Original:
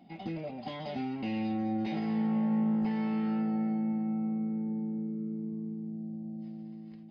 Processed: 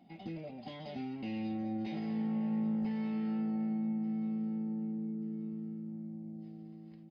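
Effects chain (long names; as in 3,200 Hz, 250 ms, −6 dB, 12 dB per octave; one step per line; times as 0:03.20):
dynamic equaliser 1,100 Hz, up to −5 dB, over −53 dBFS, Q 0.93
on a send: repeating echo 1,184 ms, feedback 32%, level −16 dB
on the sum: level −4.5 dB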